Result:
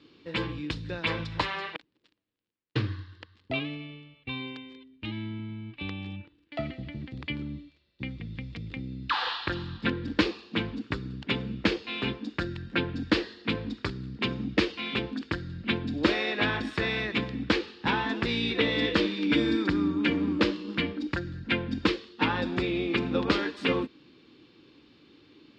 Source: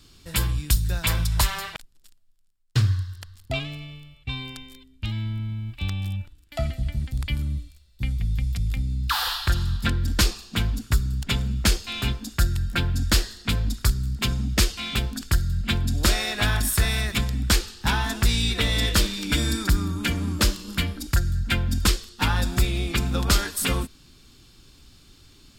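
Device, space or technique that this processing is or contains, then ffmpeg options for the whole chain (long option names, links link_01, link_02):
kitchen radio: -af "highpass=200,equalizer=frequency=310:width_type=q:width=4:gain=9,equalizer=frequency=480:width_type=q:width=4:gain=7,equalizer=frequency=690:width_type=q:width=4:gain=-5,equalizer=frequency=1400:width_type=q:width=4:gain=-5,equalizer=frequency=3300:width_type=q:width=4:gain=-3,lowpass=frequency=3500:width=0.5412,lowpass=frequency=3500:width=1.3066"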